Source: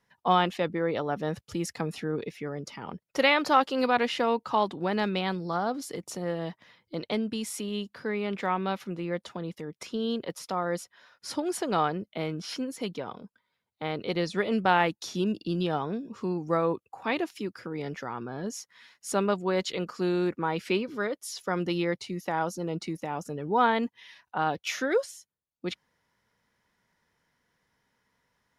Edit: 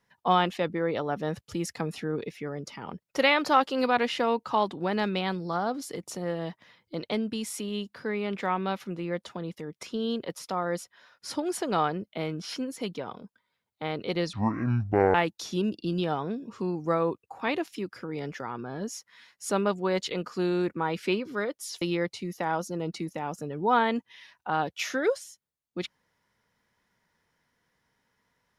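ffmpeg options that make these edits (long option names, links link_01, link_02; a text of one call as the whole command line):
ffmpeg -i in.wav -filter_complex "[0:a]asplit=4[link_01][link_02][link_03][link_04];[link_01]atrim=end=14.334[link_05];[link_02]atrim=start=14.33:end=14.77,asetpts=PTS-STARTPTS,asetrate=23814,aresample=44100,atrim=end_sample=35933,asetpts=PTS-STARTPTS[link_06];[link_03]atrim=start=14.766:end=21.442[link_07];[link_04]atrim=start=21.688[link_08];[link_05][link_06]acrossfade=duration=0.004:curve1=hsin:curve2=hsin[link_09];[link_09][link_07]acrossfade=duration=0.004:curve1=hsin:curve2=hsin[link_10];[link_10][link_08]acrossfade=duration=0.004:curve1=hsin:curve2=hsin" out.wav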